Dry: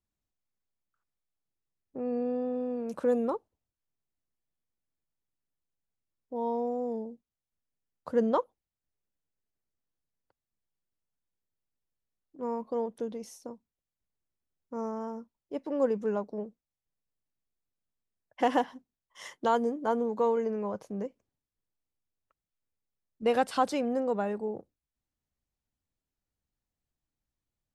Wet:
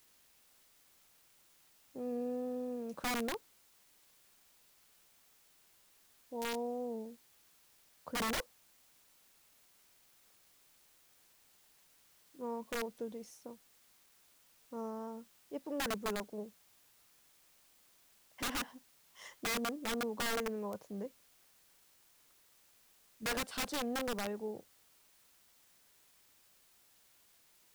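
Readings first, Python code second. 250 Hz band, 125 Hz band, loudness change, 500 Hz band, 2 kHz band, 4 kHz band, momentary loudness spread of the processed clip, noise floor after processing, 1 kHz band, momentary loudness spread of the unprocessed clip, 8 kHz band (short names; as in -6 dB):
-8.5 dB, n/a, -8.0 dB, -11.0 dB, +2.0 dB, +5.5 dB, 15 LU, -68 dBFS, -10.0 dB, 15 LU, +8.5 dB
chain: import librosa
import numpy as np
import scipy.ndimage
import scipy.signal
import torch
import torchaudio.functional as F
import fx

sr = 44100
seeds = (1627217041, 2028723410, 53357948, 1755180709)

y = fx.quant_dither(x, sr, seeds[0], bits=10, dither='triangular')
y = (np.mod(10.0 ** (23.5 / 20.0) * y + 1.0, 2.0) - 1.0) / 10.0 ** (23.5 / 20.0)
y = F.gain(torch.from_numpy(y), -7.0).numpy()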